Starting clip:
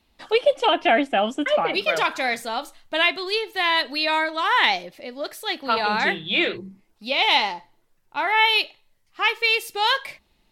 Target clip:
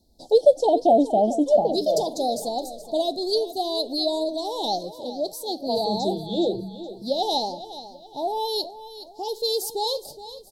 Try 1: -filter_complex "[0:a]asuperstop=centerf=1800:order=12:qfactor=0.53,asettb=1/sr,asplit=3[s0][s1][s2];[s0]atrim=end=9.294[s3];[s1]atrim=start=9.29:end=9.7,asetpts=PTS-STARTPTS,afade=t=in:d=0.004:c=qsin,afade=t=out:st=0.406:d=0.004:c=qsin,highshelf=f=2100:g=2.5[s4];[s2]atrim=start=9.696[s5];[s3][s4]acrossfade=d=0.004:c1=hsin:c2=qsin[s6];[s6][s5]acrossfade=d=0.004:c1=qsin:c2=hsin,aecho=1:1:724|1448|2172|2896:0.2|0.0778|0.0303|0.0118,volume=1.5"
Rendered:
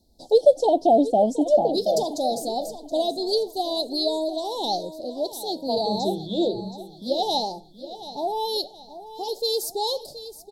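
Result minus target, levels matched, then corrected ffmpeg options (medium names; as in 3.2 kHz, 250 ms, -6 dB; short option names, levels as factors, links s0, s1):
echo 305 ms late
-filter_complex "[0:a]asuperstop=centerf=1800:order=12:qfactor=0.53,asettb=1/sr,asplit=3[s0][s1][s2];[s0]atrim=end=9.294[s3];[s1]atrim=start=9.29:end=9.7,asetpts=PTS-STARTPTS,afade=t=in:d=0.004:c=qsin,afade=t=out:st=0.406:d=0.004:c=qsin,highshelf=f=2100:g=2.5[s4];[s2]atrim=start=9.696[s5];[s3][s4]acrossfade=d=0.004:c1=hsin:c2=qsin[s6];[s6][s5]acrossfade=d=0.004:c1=qsin:c2=hsin,aecho=1:1:419|838|1257|1676:0.2|0.0778|0.0303|0.0118,volume=1.5"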